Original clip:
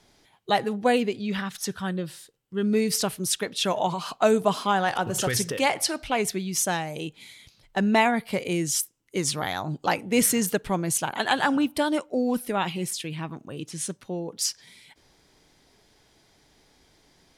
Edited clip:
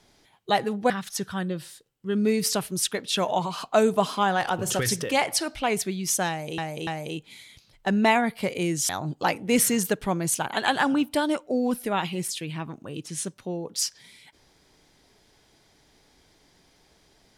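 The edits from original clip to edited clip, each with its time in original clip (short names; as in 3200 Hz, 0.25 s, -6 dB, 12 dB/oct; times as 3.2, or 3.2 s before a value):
0.9–1.38 cut
6.77–7.06 loop, 3 plays
8.79–9.52 cut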